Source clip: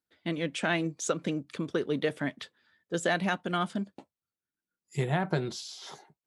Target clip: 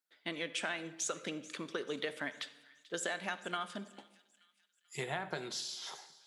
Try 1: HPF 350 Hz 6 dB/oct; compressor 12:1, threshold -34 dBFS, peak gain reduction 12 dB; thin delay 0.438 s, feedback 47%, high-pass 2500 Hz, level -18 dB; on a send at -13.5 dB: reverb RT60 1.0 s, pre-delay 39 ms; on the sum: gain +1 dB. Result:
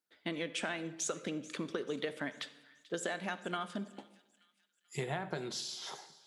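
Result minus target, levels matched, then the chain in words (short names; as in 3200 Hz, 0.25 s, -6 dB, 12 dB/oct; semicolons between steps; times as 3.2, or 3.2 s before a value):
250 Hz band +4.0 dB
HPF 950 Hz 6 dB/oct; compressor 12:1, threshold -34 dBFS, peak gain reduction 9.5 dB; thin delay 0.438 s, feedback 47%, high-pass 2500 Hz, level -18 dB; on a send at -13.5 dB: reverb RT60 1.0 s, pre-delay 39 ms; on the sum: gain +1 dB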